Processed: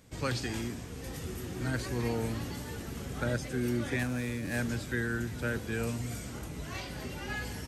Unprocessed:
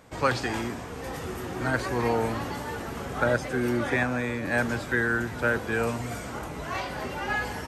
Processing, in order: 3.99–4.58 s: CVSD coder 64 kbps; peaking EQ 930 Hz -14 dB 2.5 oct

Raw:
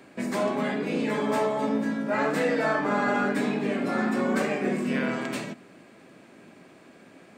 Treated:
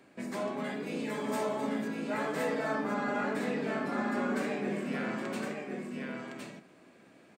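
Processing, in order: 0.64–1.88 s: treble shelf 7 kHz +10.5 dB; delay 1062 ms -3.5 dB; trim -8.5 dB

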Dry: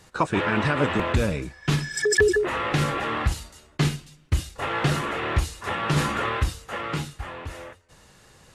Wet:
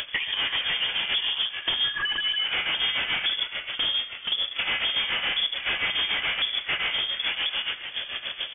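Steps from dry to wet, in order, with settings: treble shelf 2.1 kHz -8.5 dB; hum notches 50/100/150/200/250/300/350 Hz; in parallel at +0.5 dB: upward compressor, threshold -23 dBFS; on the sum: peak limiter -11 dBFS, peak gain reduction 7 dB; compression, threshold -21 dBFS, peak gain reduction 7 dB; frequency-shifting echo 478 ms, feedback 64%, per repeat +70 Hz, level -13.5 dB; tremolo 7 Hz, depth 74%; hard clipper -28.5 dBFS, distortion -8 dB; on a send at -9 dB: reverberation RT60 0.35 s, pre-delay 62 ms; on the sum: transient shaper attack +4 dB, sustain -4 dB; frequency inversion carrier 3.4 kHz; trim +4 dB

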